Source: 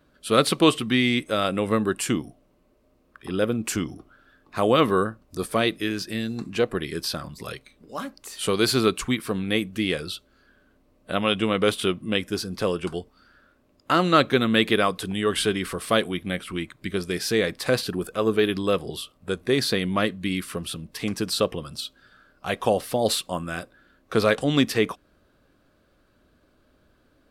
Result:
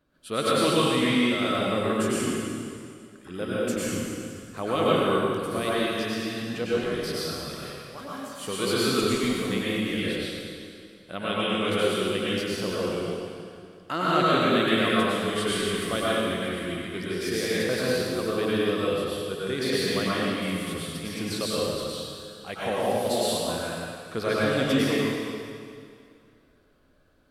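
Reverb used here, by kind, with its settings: plate-style reverb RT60 2.3 s, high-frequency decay 0.9×, pre-delay 85 ms, DRR -8 dB; trim -10 dB

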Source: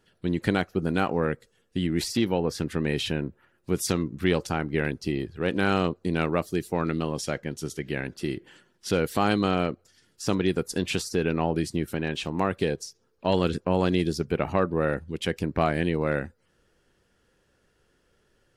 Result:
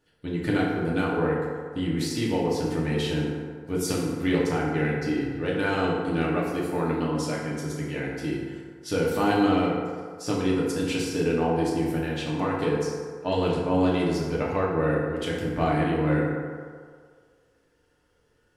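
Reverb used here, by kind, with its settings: FDN reverb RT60 1.9 s, low-frequency decay 0.75×, high-frequency decay 0.45×, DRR -5 dB; trim -6 dB

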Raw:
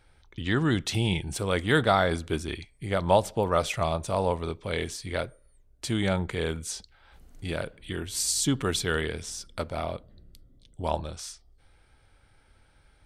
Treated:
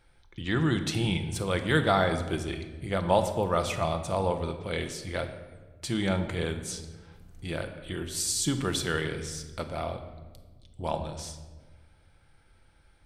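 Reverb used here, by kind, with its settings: simulated room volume 1100 m³, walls mixed, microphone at 0.8 m; trim -2.5 dB

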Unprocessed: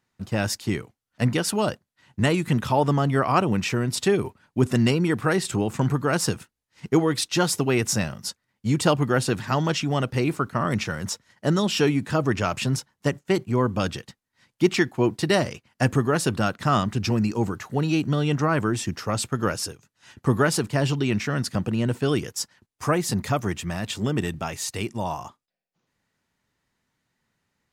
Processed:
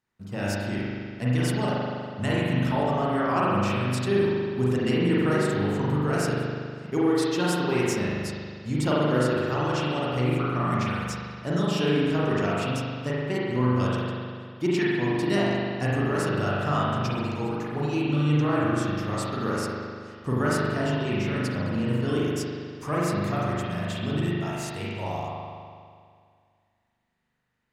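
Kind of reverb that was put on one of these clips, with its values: spring tank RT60 2.1 s, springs 40 ms, chirp 30 ms, DRR -7 dB; trim -9.5 dB

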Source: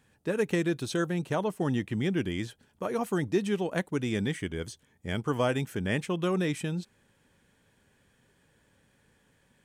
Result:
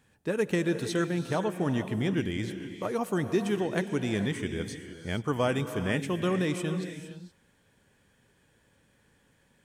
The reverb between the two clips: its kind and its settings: gated-style reverb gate 490 ms rising, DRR 8.5 dB

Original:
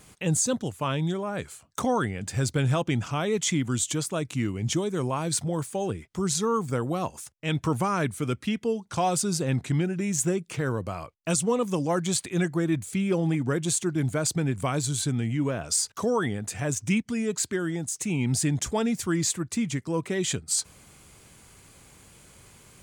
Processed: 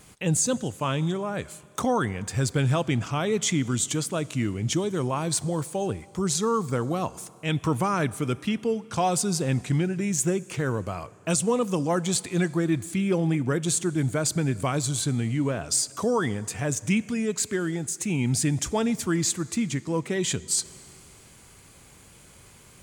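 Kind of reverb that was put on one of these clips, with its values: Schroeder reverb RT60 2.6 s, combs from 29 ms, DRR 19.5 dB; trim +1 dB

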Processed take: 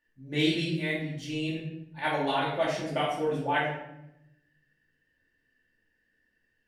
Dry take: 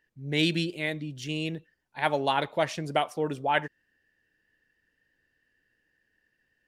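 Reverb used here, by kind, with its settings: simulated room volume 250 m³, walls mixed, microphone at 2.5 m; trim -9 dB

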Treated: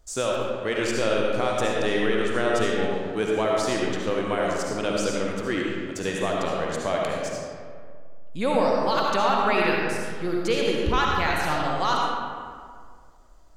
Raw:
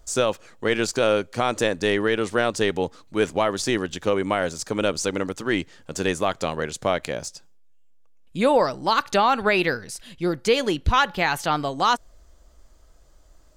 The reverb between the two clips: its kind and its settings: algorithmic reverb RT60 2 s, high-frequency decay 0.55×, pre-delay 30 ms, DRR -2.5 dB; trim -6 dB

